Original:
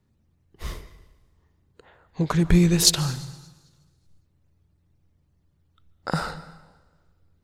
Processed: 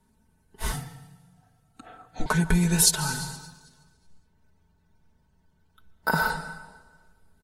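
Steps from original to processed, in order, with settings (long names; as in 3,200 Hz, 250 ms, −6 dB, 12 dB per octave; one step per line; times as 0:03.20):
parametric band 10,000 Hz +14 dB 0.8 octaves
hollow resonant body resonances 930/1,500 Hz, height 16 dB, ringing for 60 ms
downward compressor 3 to 1, threshold −23 dBFS, peak gain reduction 12.5 dB
comb filter 4.6 ms, depth 80%
0:00.72–0:02.26: frequency shifter −180 Hz
0:03.36–0:06.30: bad sample-rate conversion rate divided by 3×, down filtered, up hold
AAC 48 kbit/s 44,100 Hz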